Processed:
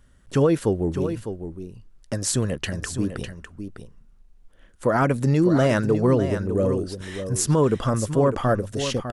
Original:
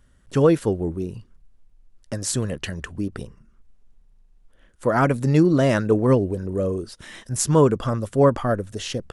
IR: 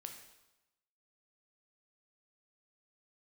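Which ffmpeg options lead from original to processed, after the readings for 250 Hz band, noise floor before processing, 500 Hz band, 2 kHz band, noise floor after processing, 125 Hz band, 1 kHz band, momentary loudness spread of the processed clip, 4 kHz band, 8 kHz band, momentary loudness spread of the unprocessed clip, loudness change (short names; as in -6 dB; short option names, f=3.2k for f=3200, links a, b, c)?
-1.0 dB, -57 dBFS, -1.0 dB, 0.0 dB, -54 dBFS, 0.0 dB, -1.0 dB, 16 LU, +1.0 dB, +0.5 dB, 14 LU, -1.0 dB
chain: -af "alimiter=limit=-12dB:level=0:latency=1:release=123,aecho=1:1:603:0.335,volume=1.5dB"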